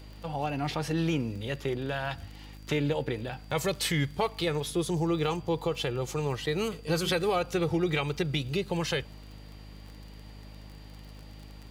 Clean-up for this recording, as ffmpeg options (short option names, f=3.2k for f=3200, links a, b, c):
-af "adeclick=t=4,bandreject=f=51.4:t=h:w=4,bandreject=f=102.8:t=h:w=4,bandreject=f=154.2:t=h:w=4,bandreject=f=205.6:t=h:w=4,bandreject=f=257:t=h:w=4,bandreject=f=308.4:t=h:w=4,bandreject=f=4.7k:w=30"